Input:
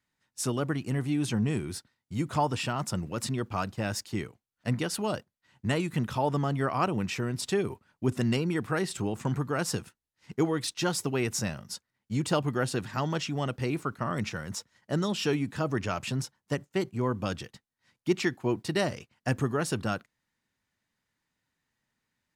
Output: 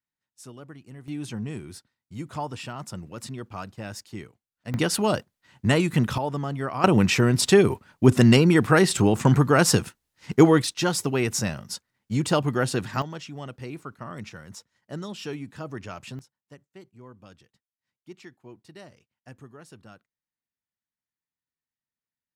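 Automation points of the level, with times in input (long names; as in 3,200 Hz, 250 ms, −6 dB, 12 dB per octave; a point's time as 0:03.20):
−14 dB
from 0:01.08 −5 dB
from 0:04.74 +7.5 dB
from 0:06.18 −1 dB
from 0:06.84 +11.5 dB
from 0:10.62 +4.5 dB
from 0:13.02 −6.5 dB
from 0:16.19 −18 dB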